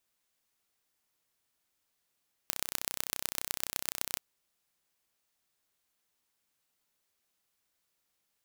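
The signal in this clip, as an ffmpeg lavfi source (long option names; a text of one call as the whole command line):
ffmpeg -f lavfi -i "aevalsrc='0.75*eq(mod(n,1391),0)*(0.5+0.5*eq(mod(n,5564),0))':duration=1.69:sample_rate=44100" out.wav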